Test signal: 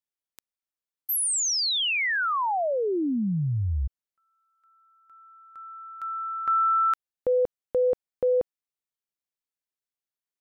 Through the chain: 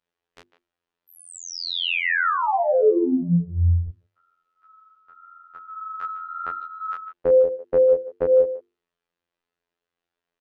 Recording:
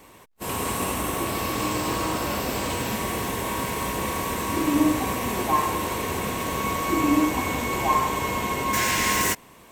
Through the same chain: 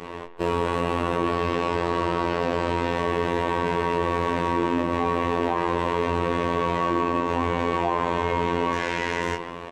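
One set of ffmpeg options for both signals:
ffmpeg -i in.wav -filter_complex "[0:a]acompressor=threshold=-35dB:ratio=16:attack=19:release=31:detection=rms,asplit=2[link_01][link_02];[link_02]adelay=150,highpass=300,lowpass=3400,asoftclip=type=hard:threshold=-30dB,volume=-13dB[link_03];[link_01][link_03]amix=inputs=2:normalize=0,flanger=delay=17.5:depth=6.7:speed=0.89,lowpass=2800,equalizer=frequency=430:width=2.4:gain=6.5,bandreject=frequency=2200:width=16,afftfilt=real='hypot(re,im)*cos(PI*b)':imag='0':win_size=2048:overlap=0.75,bandreject=frequency=50:width_type=h:width=6,bandreject=frequency=100:width_type=h:width=6,bandreject=frequency=150:width_type=h:width=6,bandreject=frequency=200:width_type=h:width=6,bandreject=frequency=250:width_type=h:width=6,bandreject=frequency=300:width_type=h:width=6,bandreject=frequency=350:width_type=h:width=6,bandreject=frequency=400:width_type=h:width=6,bandreject=frequency=450:width_type=h:width=6,alimiter=level_in=27.5dB:limit=-1dB:release=50:level=0:latency=1,volume=-7.5dB" out.wav

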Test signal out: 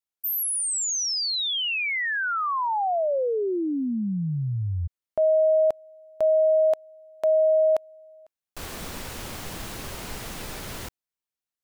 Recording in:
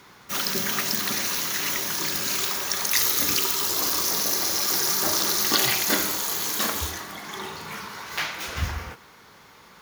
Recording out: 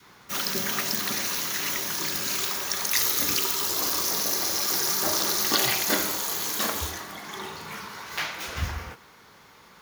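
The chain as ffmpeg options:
ffmpeg -i in.wav -af "adynamicequalizer=threshold=0.02:dfrequency=620:dqfactor=1.2:tfrequency=620:tqfactor=1.2:attack=5:release=100:ratio=0.375:range=1.5:mode=boostabove:tftype=bell,volume=-2dB" out.wav

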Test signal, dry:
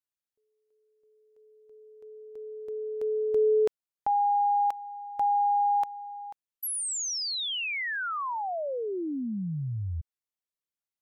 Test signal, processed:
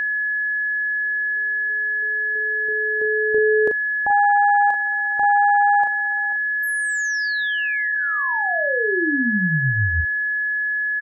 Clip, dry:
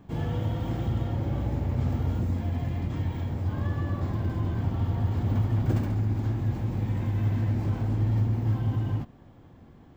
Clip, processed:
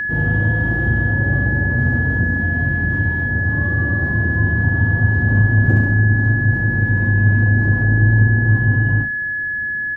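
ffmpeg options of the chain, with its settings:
ffmpeg -i in.wav -filter_complex "[0:a]tiltshelf=frequency=1200:gain=7.5,asplit=2[link_01][link_02];[link_02]adelay=38,volume=-6dB[link_03];[link_01][link_03]amix=inputs=2:normalize=0,aeval=exprs='val(0)+0.0891*sin(2*PI*1700*n/s)':channel_layout=same,volume=1.5dB" out.wav

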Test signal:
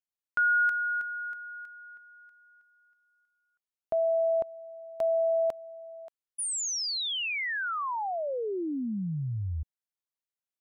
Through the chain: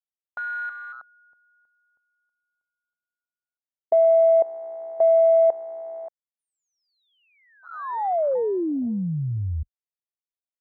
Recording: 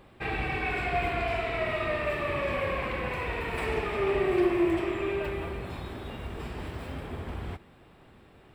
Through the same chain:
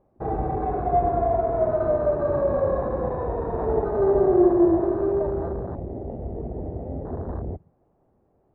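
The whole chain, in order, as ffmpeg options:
ffmpeg -i in.wav -af "lowpass=frequency=690:width_type=q:width=1.6,afwtdn=0.0141,volume=5.5dB" out.wav

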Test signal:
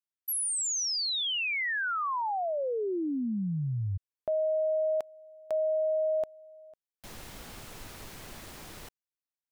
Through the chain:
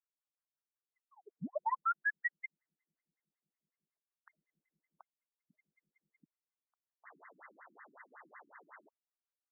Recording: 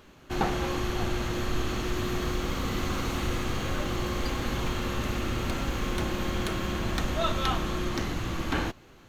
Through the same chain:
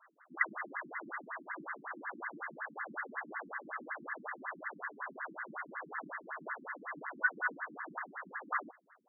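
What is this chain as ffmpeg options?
ffmpeg -i in.wav -af "lowpass=frequency=2400:width_type=q:width=0.5098,lowpass=frequency=2400:width_type=q:width=0.6013,lowpass=frequency=2400:width_type=q:width=0.9,lowpass=frequency=2400:width_type=q:width=2.563,afreqshift=-2800,aeval=exprs='0.282*(cos(1*acos(clip(val(0)/0.282,-1,1)))-cos(1*PI/2))+0.0794*(cos(2*acos(clip(val(0)/0.282,-1,1)))-cos(2*PI/2))+0.0562*(cos(4*acos(clip(val(0)/0.282,-1,1)))-cos(4*PI/2))':channel_layout=same,afftfilt=real='re*between(b*sr/1024,230*pow(1500/230,0.5+0.5*sin(2*PI*5.4*pts/sr))/1.41,230*pow(1500/230,0.5+0.5*sin(2*PI*5.4*pts/sr))*1.41)':imag='im*between(b*sr/1024,230*pow(1500/230,0.5+0.5*sin(2*PI*5.4*pts/sr))/1.41,230*pow(1500/230,0.5+0.5*sin(2*PI*5.4*pts/sr))*1.41)':win_size=1024:overlap=0.75,volume=1.5dB" out.wav

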